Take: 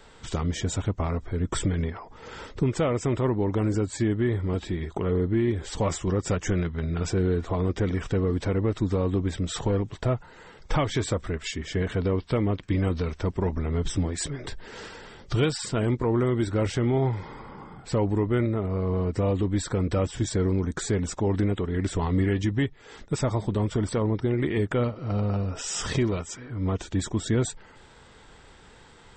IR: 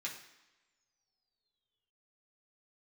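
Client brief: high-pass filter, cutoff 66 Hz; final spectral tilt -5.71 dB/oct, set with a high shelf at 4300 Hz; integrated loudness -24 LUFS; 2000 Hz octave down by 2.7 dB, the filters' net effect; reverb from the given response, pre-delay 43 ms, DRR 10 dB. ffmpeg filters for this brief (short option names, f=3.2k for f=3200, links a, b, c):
-filter_complex "[0:a]highpass=66,equalizer=f=2k:t=o:g=-4.5,highshelf=f=4.3k:g=5.5,asplit=2[a][b];[1:a]atrim=start_sample=2205,adelay=43[c];[b][c]afir=irnorm=-1:irlink=0,volume=-10.5dB[d];[a][d]amix=inputs=2:normalize=0,volume=3dB"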